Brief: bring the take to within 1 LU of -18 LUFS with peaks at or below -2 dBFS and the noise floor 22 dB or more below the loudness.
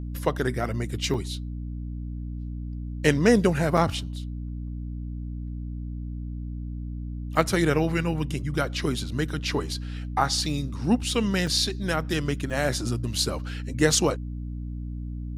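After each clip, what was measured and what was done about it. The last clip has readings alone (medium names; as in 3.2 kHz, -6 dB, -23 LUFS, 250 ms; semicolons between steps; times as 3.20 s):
dropouts 4; longest dropout 4.2 ms; hum 60 Hz; highest harmonic 300 Hz; hum level -30 dBFS; loudness -27.0 LUFS; peak level -5.5 dBFS; loudness target -18.0 LUFS
-> interpolate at 1.14/3.77/11.47/12.50 s, 4.2 ms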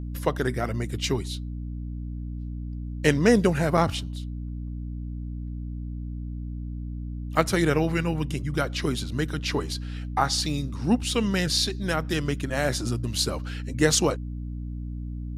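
dropouts 0; hum 60 Hz; highest harmonic 300 Hz; hum level -30 dBFS
-> de-hum 60 Hz, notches 5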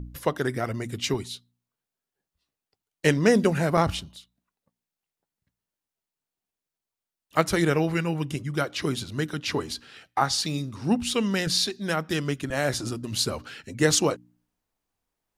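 hum not found; loudness -26.0 LUFS; peak level -5.5 dBFS; loudness target -18.0 LUFS
-> trim +8 dB; peak limiter -2 dBFS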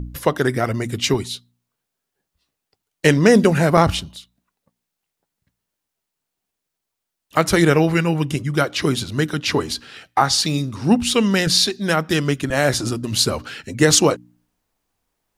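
loudness -18.5 LUFS; peak level -2.0 dBFS; noise floor -81 dBFS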